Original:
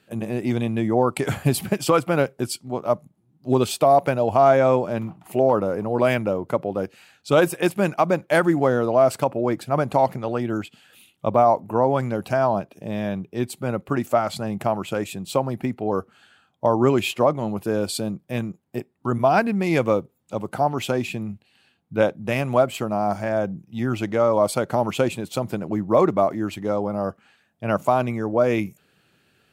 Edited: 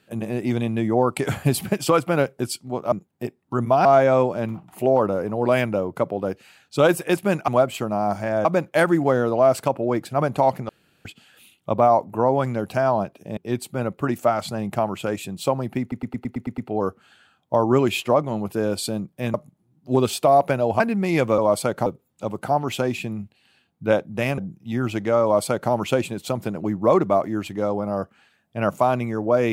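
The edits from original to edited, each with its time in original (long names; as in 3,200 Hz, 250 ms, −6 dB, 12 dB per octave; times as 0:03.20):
0:02.92–0:04.38: swap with 0:18.45–0:19.38
0:10.25–0:10.61: fill with room tone
0:12.93–0:13.25: remove
0:15.69: stutter 0.11 s, 8 plays
0:22.48–0:23.45: move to 0:08.01
0:24.30–0:24.78: duplicate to 0:19.96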